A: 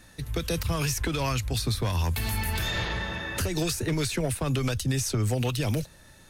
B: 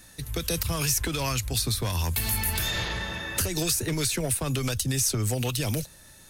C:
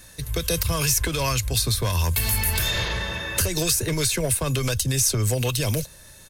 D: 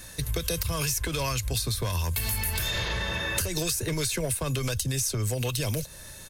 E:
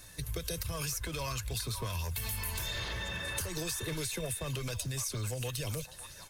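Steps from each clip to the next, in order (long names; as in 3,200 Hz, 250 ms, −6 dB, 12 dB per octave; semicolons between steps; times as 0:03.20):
high-shelf EQ 5,200 Hz +11.5 dB; level −1.5 dB
comb filter 1.9 ms, depth 34%; level +3.5 dB
downward compressor 5 to 1, threshold −29 dBFS, peak gain reduction 11 dB; level +3 dB
spectral magnitudes quantised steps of 15 dB; echo through a band-pass that steps 560 ms, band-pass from 1,200 Hz, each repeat 1.4 octaves, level −4 dB; floating-point word with a short mantissa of 4 bits; level −7.5 dB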